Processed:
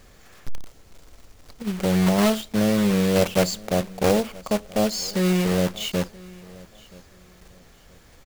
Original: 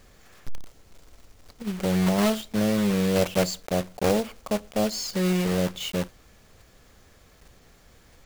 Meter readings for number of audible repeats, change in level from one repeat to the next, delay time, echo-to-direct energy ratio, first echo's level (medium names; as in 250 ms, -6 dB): 2, -11.5 dB, 977 ms, -22.0 dB, -22.5 dB